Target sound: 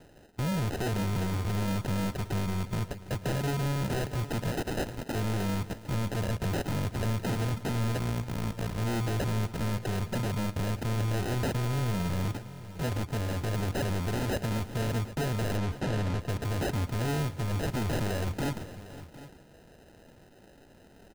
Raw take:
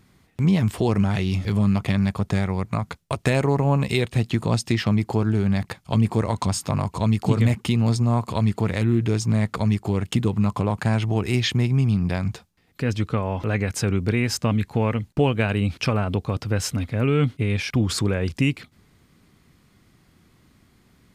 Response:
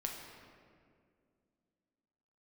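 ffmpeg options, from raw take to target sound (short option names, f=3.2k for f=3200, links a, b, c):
-filter_complex "[0:a]asettb=1/sr,asplit=3[a][b][c];[a]atrim=end=4.514[d];[b]atrim=start=4.51:end=5.15,asetpts=PTS-STARTPTS,afade=t=in:d=0.004:c=qsin,afade=t=out:st=0.636:d=0.004:c=qsin,highpass=f=630:w=0.5412,highpass=f=630:w=1.3066[e];[c]atrim=start=5.146[f];[d][e]acrossfade=d=0.004:c1=hsin:c2=qsin[g];[g][f]acrossfade=d=0.004:c1=qsin:c2=hsin,afwtdn=0.0447,acompressor=threshold=-32dB:ratio=2,aexciter=amount=13.2:drive=4.6:freq=2.8k,acrusher=samples=39:mix=1:aa=0.000001,asettb=1/sr,asplit=3[h][i][j];[h]atrim=end=7.994[k];[i]atrim=start=7.99:end=8.79,asetpts=PTS-STARTPTS,afade=t=in:d=0.004:c=qsin,afade=t=out:st=0.796:d=0.004:c=qsin,tremolo=f=58:d=1[l];[j]atrim=start=8.786[m];[k][l]acrossfade=d=0.004:c1=hsin:c2=qsin[n];[n][m]acrossfade=d=0.004:c1=qsin:c2=hsin,asoftclip=type=hard:threshold=-34.5dB,asettb=1/sr,asplit=3[o][p][q];[o]atrim=end=15.574[r];[p]atrim=start=15.57:end=16.29,asetpts=PTS-STARTPTS,afade=t=in:d=0.004:c=qsin,afade=t=out:st=0.716:d=0.004:c=qsin,adynamicsmooth=sensitivity=6:basefreq=5.3k[s];[q]atrim=start=16.286[t];[r][s]acrossfade=d=0.004:c1=hsin:c2=qsin[u];[u][t]acrossfade=d=0.004:c1=qsin:c2=hsin,aecho=1:1:110|515|756:0.106|0.133|0.15,volume=6.5dB"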